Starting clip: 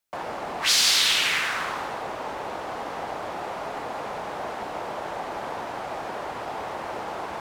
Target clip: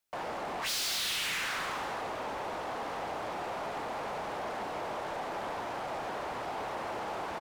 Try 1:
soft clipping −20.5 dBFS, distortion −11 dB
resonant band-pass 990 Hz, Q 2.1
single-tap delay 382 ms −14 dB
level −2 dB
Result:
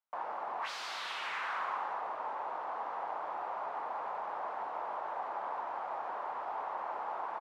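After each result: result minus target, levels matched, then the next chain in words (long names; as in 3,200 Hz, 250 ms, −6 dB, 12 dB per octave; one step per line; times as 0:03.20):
soft clipping: distortion −6 dB; 1,000 Hz band +4.0 dB
soft clipping −29.5 dBFS, distortion −5 dB
resonant band-pass 990 Hz, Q 2.1
single-tap delay 382 ms −14 dB
level −2 dB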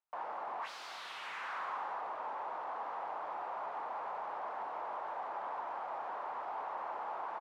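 1,000 Hz band +4.0 dB
soft clipping −29.5 dBFS, distortion −5 dB
single-tap delay 382 ms −14 dB
level −2 dB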